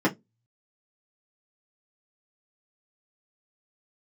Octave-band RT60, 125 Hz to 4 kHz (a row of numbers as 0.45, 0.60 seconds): 0.30, 0.25, 0.20, 0.10, 0.15, 0.15 seconds